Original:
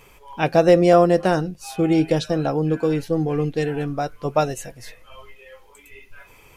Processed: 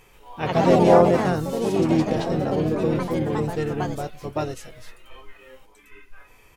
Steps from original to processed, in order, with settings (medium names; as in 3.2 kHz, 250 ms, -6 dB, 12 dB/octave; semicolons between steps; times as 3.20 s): harmony voices -12 st -11 dB, -5 st -6 dB; ever faster or slower copies 131 ms, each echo +3 st, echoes 3; harmonic-percussive split harmonic +7 dB; trim -10 dB